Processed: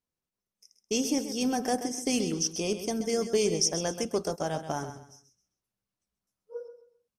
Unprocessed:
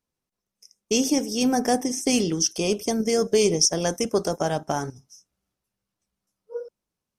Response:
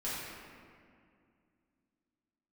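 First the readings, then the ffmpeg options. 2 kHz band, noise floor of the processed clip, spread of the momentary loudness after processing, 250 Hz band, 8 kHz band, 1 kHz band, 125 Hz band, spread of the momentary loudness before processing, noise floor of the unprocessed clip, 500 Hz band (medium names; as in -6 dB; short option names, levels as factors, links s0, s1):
-6.0 dB, under -85 dBFS, 17 LU, -6.0 dB, -6.0 dB, -6.0 dB, -6.0 dB, 12 LU, under -85 dBFS, -6.0 dB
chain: -af "aecho=1:1:131|262|393:0.299|0.0836|0.0234,volume=0.473"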